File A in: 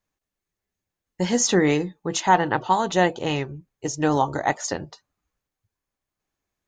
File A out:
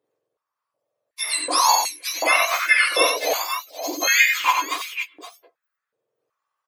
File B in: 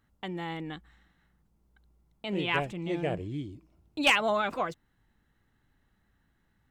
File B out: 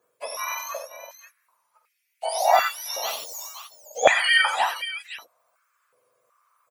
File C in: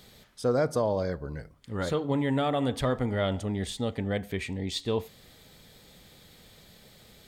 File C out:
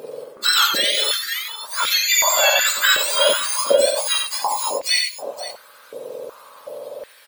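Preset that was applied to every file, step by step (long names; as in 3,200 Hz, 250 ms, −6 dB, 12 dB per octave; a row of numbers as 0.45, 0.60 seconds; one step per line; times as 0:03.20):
frequency axis turned over on the octave scale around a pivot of 1,400 Hz
multi-tap delay 48/91/520 ms −9.5/−5.5/−11 dB
high-pass on a step sequencer 2.7 Hz 450–2,300 Hz
normalise the peak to −3 dBFS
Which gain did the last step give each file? +2.0, +4.5, +12.0 decibels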